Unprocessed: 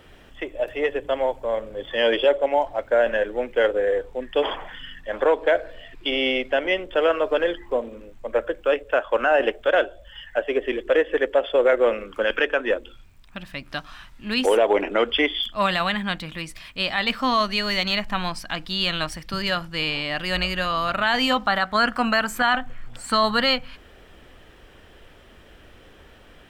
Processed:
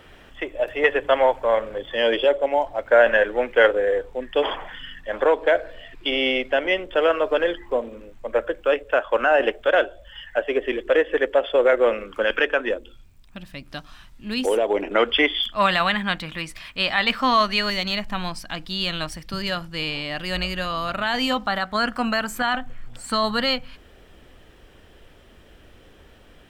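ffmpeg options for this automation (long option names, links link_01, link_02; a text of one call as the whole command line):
ffmpeg -i in.wav -af "asetnsamples=nb_out_samples=441:pad=0,asendcmd='0.84 equalizer g 10.5;1.78 equalizer g -0.5;2.86 equalizer g 8;3.75 equalizer g 1.5;12.69 equalizer g -6.5;14.91 equalizer g 3.5;17.7 equalizer g -3.5',equalizer=frequency=1500:width_type=o:width=2.6:gain=3.5" out.wav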